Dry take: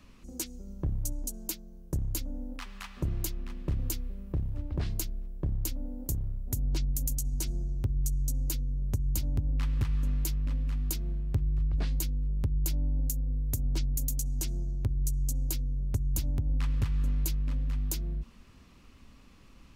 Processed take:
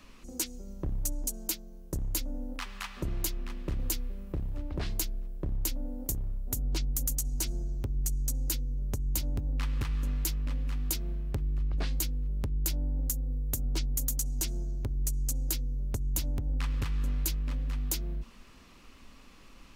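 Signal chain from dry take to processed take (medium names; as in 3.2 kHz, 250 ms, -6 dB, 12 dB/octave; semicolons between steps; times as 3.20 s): peaking EQ 97 Hz -10 dB 2.4 oct; saturation -25 dBFS, distortion -22 dB; trim +5 dB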